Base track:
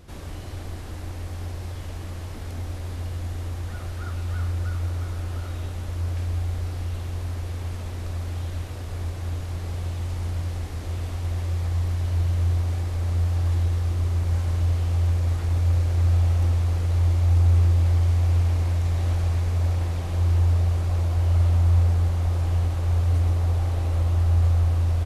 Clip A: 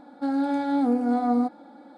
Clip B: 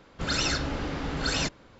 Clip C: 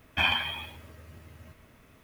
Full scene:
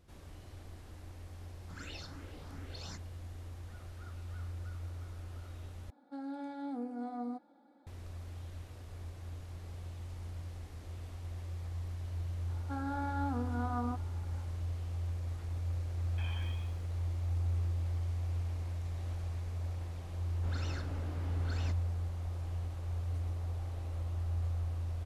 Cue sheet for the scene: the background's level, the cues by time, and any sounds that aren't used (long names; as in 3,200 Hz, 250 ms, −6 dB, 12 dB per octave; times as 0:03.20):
base track −15.5 dB
0:01.49: mix in B −17.5 dB + frequency shifter mixed with the dry sound +2.5 Hz
0:05.90: overwrite with A −17 dB
0:12.48: mix in A −15.5 dB + flat-topped bell 1,200 Hz +12 dB 1.1 octaves
0:16.01: mix in C −17.5 dB + brickwall limiter −21 dBFS
0:20.24: mix in B −14 dB + high-shelf EQ 2,700 Hz −11.5 dB